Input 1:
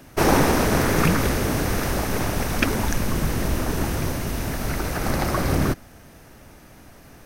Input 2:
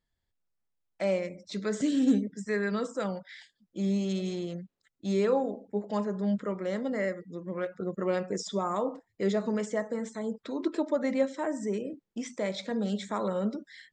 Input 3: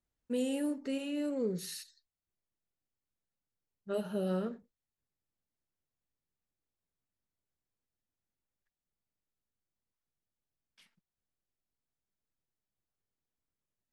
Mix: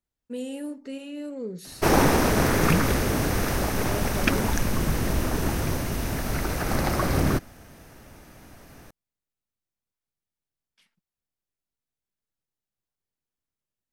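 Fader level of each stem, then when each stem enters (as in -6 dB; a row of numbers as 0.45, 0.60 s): -1.5 dB, off, -0.5 dB; 1.65 s, off, 0.00 s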